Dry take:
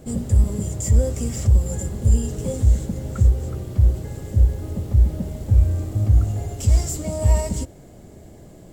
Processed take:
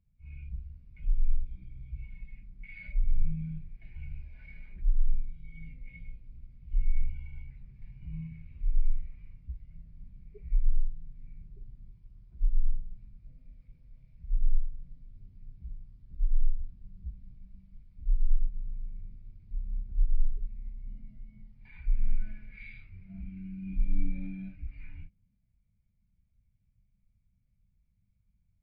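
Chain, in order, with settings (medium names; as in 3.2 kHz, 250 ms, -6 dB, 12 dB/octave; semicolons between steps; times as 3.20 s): dynamic bell 920 Hz, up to +6 dB, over -45 dBFS, Q 1; wide varispeed 0.305×; spectral contrast expander 1.5:1; trim -7.5 dB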